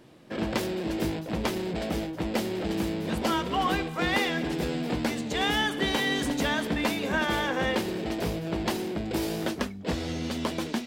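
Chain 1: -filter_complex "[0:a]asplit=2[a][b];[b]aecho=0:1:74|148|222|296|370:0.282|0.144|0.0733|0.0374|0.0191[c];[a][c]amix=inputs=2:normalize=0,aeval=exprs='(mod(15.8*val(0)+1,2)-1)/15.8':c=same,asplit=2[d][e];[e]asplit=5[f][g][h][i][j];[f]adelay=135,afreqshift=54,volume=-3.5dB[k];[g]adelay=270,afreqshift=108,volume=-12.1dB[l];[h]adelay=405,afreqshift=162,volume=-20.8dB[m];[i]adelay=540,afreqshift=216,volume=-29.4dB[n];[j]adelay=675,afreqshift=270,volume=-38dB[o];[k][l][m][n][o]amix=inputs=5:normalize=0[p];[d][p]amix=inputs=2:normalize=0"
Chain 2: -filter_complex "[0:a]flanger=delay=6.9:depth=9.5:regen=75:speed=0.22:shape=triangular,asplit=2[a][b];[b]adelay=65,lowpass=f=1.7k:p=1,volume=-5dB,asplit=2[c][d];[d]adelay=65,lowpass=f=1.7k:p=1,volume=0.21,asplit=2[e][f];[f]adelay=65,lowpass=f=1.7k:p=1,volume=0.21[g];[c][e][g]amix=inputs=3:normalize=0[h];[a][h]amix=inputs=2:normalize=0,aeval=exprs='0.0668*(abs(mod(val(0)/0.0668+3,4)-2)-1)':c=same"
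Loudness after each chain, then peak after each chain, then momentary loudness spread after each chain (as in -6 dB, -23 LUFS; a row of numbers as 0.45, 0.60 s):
-27.0, -32.5 LUFS; -14.5, -23.5 dBFS; 3, 5 LU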